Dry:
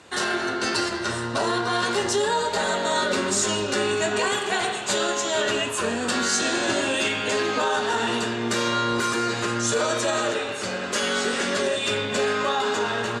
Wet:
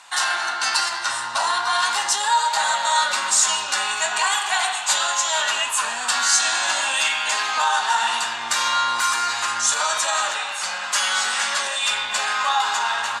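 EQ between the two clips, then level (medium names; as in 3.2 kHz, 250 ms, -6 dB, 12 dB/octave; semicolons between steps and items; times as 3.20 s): tilt EQ +2.5 dB/octave; resonant low shelf 600 Hz -12.5 dB, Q 3; 0.0 dB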